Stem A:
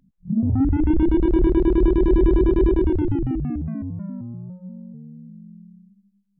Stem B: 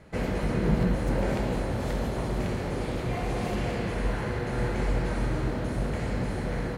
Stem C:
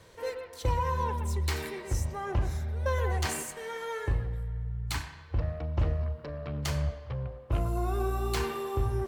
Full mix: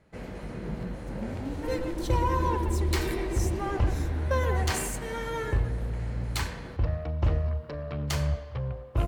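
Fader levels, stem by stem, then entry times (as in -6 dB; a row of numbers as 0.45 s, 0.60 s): -16.5 dB, -10.5 dB, +2.5 dB; 0.85 s, 0.00 s, 1.45 s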